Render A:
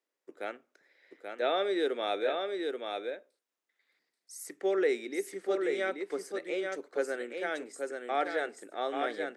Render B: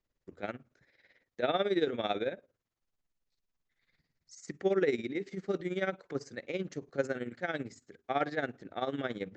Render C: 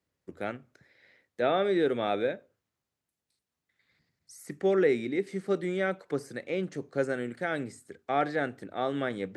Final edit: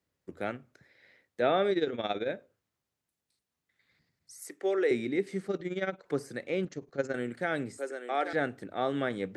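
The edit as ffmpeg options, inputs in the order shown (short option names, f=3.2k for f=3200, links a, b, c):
-filter_complex "[1:a]asplit=3[a][b][c];[0:a]asplit=2[d][e];[2:a]asplit=6[f][g][h][i][j][k];[f]atrim=end=1.712[l];[a]atrim=start=1.708:end=2.292[m];[g]atrim=start=2.288:end=4.422[n];[d]atrim=start=4.418:end=4.912[o];[h]atrim=start=4.908:end=5.482[p];[b]atrim=start=5.478:end=6.062[q];[i]atrim=start=6.058:end=6.652[r];[c]atrim=start=6.648:end=7.142[s];[j]atrim=start=7.138:end=7.782[t];[e]atrim=start=7.778:end=8.332[u];[k]atrim=start=8.328[v];[l][m]acrossfade=d=0.004:c1=hsin:c2=hsin[w];[w][n]acrossfade=d=0.004:c1=hsin:c2=hsin[x];[x][o]acrossfade=d=0.004:c1=hsin:c2=hsin[y];[y][p]acrossfade=d=0.004:c1=hsin:c2=hsin[z];[z][q]acrossfade=d=0.004:c1=hsin:c2=hsin[aa];[aa][r]acrossfade=d=0.004:c1=hsin:c2=hsin[ab];[ab][s]acrossfade=d=0.004:c1=hsin:c2=hsin[ac];[ac][t]acrossfade=d=0.004:c1=hsin:c2=hsin[ad];[ad][u]acrossfade=d=0.004:c1=hsin:c2=hsin[ae];[ae][v]acrossfade=d=0.004:c1=hsin:c2=hsin"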